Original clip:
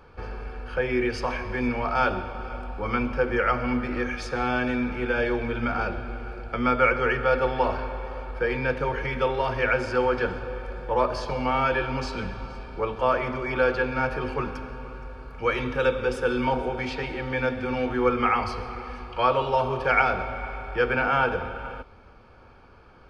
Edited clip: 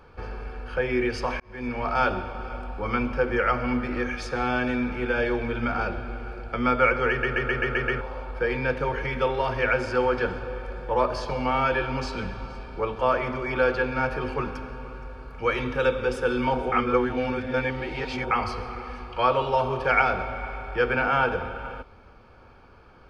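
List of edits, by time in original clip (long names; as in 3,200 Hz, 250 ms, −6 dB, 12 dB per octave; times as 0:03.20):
0:01.40–0:01.88: fade in
0:07.10: stutter in place 0.13 s, 7 plays
0:16.72–0:18.31: reverse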